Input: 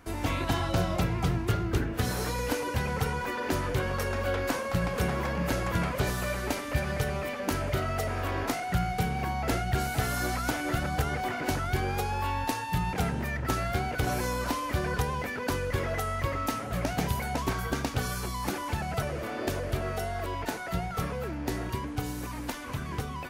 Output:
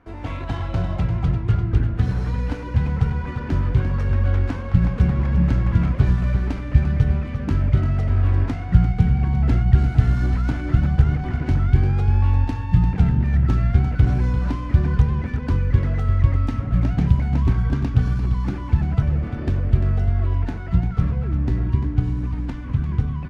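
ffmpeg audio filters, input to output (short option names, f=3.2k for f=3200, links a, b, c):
-af "asubboost=boost=8:cutoff=190,adynamicsmooth=sensitivity=2:basefreq=2.4k,aecho=1:1:346:0.335,volume=-1dB"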